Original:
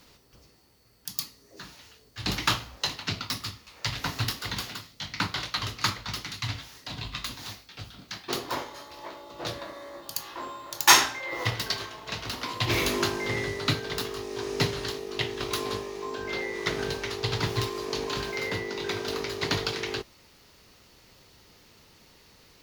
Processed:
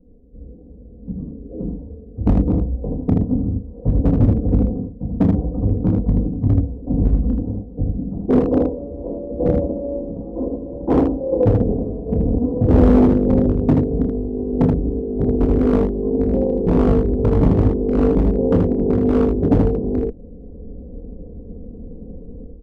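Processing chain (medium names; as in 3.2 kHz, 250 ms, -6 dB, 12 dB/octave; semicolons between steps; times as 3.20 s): steep low-pass 540 Hz 36 dB/octave; tilt EQ -2.5 dB/octave; comb 4.1 ms, depth 81%; level rider gain up to 16 dB; overload inside the chain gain 9 dB; early reflections 28 ms -7 dB, 79 ms -3.5 dB; loudspeaker Doppler distortion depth 0.32 ms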